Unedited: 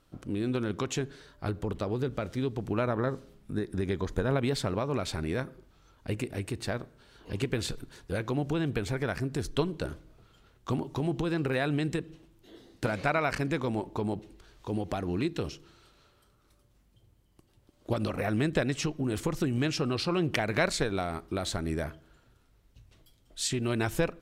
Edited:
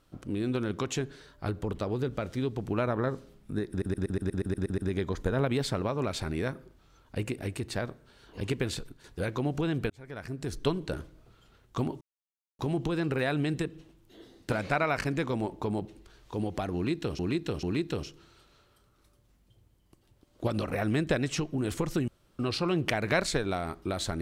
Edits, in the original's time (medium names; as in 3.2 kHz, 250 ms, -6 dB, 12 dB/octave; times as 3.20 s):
3.70 s: stutter 0.12 s, 10 plays
7.54–7.96 s: fade out linear, to -8 dB
8.82–9.59 s: fade in
10.93 s: insert silence 0.58 s
15.09–15.53 s: loop, 3 plays
19.54–19.85 s: room tone